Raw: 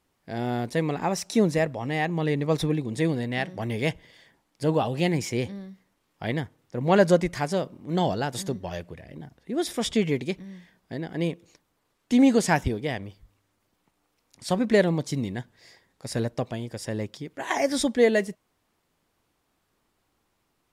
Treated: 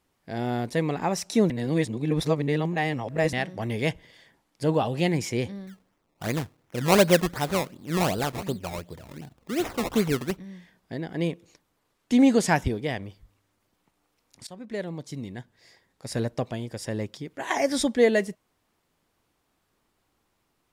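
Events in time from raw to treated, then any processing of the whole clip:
1.50–3.33 s: reverse
5.67–10.37 s: decimation with a swept rate 20× 2.7 Hz
14.47–16.31 s: fade in, from -22 dB

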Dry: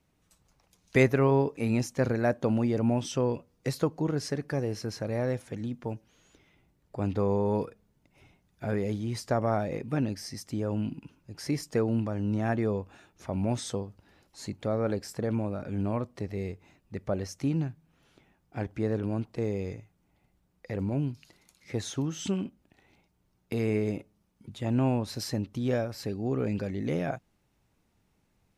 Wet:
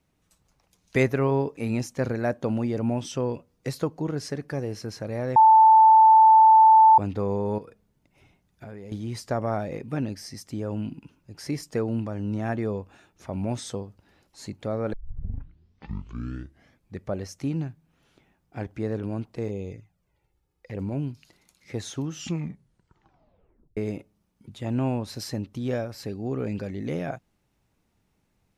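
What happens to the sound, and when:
5.36–6.98 s: bleep 882 Hz -10.5 dBFS
7.58–8.92 s: compression 5:1, threshold -38 dBFS
14.93 s: tape start 2.11 s
19.48–20.77 s: touch-sensitive flanger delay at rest 2.4 ms, full sweep at -29.5 dBFS
22.11 s: tape stop 1.66 s

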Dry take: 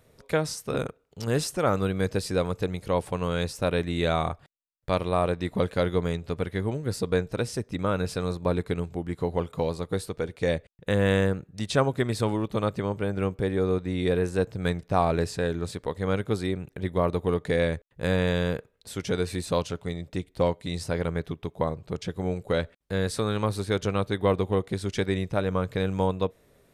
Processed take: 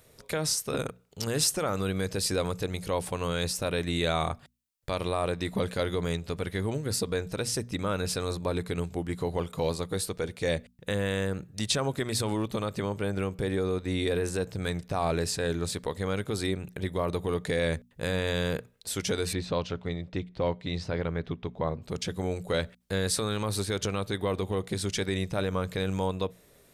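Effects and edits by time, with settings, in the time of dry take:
19.33–21.82 s: distance through air 210 m
whole clip: peak limiter -18.5 dBFS; treble shelf 3 kHz +9 dB; hum notches 60/120/180/240 Hz

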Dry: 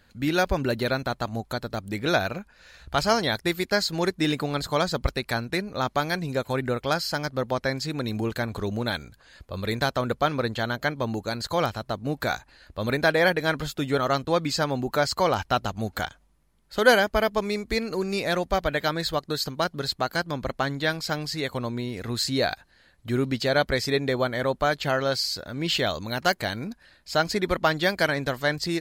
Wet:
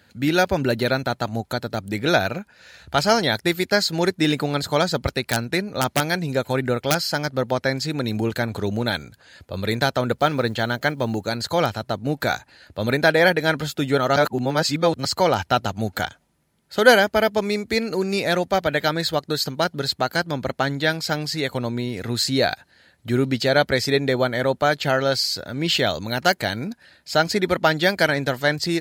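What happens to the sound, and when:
5.20–7.02 s: integer overflow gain 13.5 dB
10.14–11.30 s: block-companded coder 7-bit
14.16–15.05 s: reverse
whole clip: high-pass 79 Hz 24 dB/octave; band-stop 1.1 kHz, Q 7.1; trim +4.5 dB

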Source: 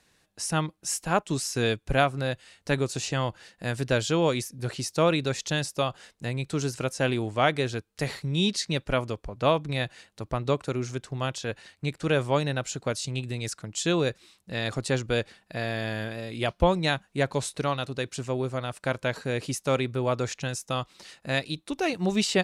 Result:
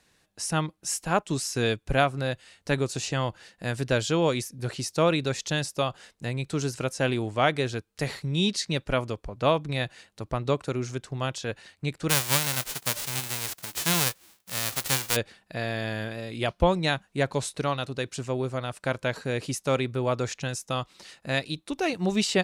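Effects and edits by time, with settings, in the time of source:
12.09–15.15 s: formants flattened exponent 0.1

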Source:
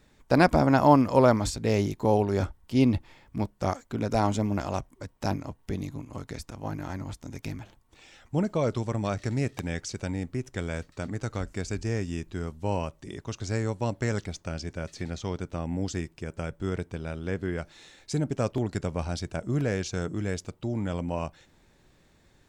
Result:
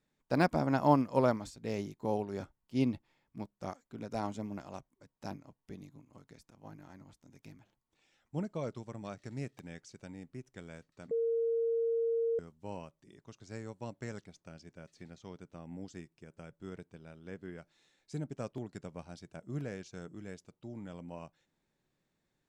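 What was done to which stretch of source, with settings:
11.11–12.39 s: bleep 460 Hz -18 dBFS
whole clip: de-esser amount 55%; resonant low shelf 110 Hz -6.5 dB, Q 1.5; upward expansion 1.5:1, over -38 dBFS; trim -7 dB

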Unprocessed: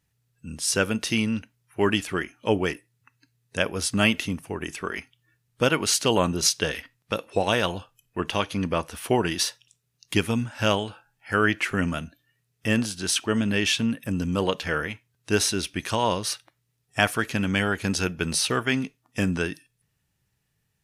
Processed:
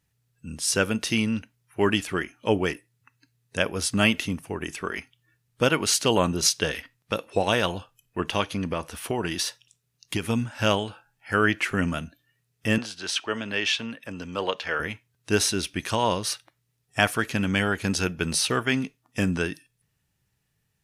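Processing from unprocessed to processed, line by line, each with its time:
8.51–10.29 s: compression 3:1, threshold -23 dBFS
12.78–14.80 s: three-band isolator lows -13 dB, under 410 Hz, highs -15 dB, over 5.9 kHz

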